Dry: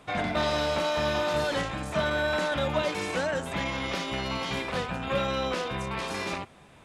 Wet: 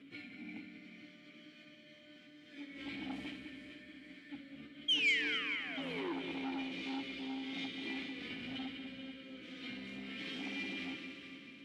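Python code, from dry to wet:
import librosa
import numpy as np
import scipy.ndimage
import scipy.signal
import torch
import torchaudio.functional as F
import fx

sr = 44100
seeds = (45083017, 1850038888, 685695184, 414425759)

p1 = fx.sample_hold(x, sr, seeds[0], rate_hz=5600.0, jitter_pct=0)
p2 = x + (p1 * 10.0 ** (-6.0 / 20.0))
p3 = fx.formant_shift(p2, sr, semitones=2)
p4 = fx.over_compress(p3, sr, threshold_db=-31.0, ratio=-0.5)
p5 = fx.stretch_vocoder_free(p4, sr, factor=1.7)
p6 = fx.spec_paint(p5, sr, seeds[1], shape='fall', start_s=4.88, length_s=1.25, low_hz=320.0, high_hz=3300.0, level_db=-24.0)
p7 = fx.echo_heads(p6, sr, ms=65, heads='first and third', feedback_pct=62, wet_db=-9.0)
p8 = fx.dynamic_eq(p7, sr, hz=4400.0, q=1.2, threshold_db=-45.0, ratio=4.0, max_db=5)
p9 = fx.vowel_filter(p8, sr, vowel='i')
p10 = fx.echo_feedback(p9, sr, ms=438, feedback_pct=46, wet_db=-10)
p11 = fx.transformer_sat(p10, sr, knee_hz=1700.0)
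y = p11 * 10.0 ** (1.0 / 20.0)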